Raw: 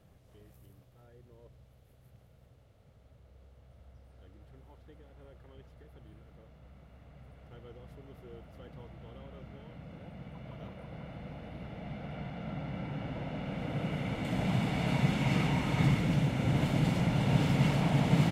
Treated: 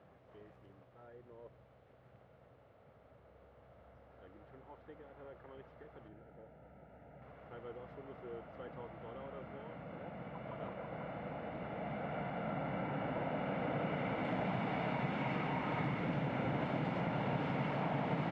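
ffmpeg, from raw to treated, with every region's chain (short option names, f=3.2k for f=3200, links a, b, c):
-filter_complex "[0:a]asettb=1/sr,asplit=3[a][b][c];[a]atrim=end=6.084[d];[b]atrim=start=6.08:end=7.22,asetpts=PTS-STARTPTS,afade=t=in:d=0.004:c=qsin,afade=t=out:st=1.136:d=0.004:c=qsin,asuperstop=centerf=1100:order=8:qfactor=4.2,equalizer=f=4.6k:t=o:w=2.8:g=-8[e];[c]atrim=start=7.216[f];[d][e]acrossfade=d=0.004:c1=hsin:c2=qsin[g];[g][f]acrossfade=d=0.004:c1=qsin:c2=hsin,highpass=f=610:p=1,acompressor=threshold=-41dB:ratio=6,lowpass=1.6k,volume=8.5dB"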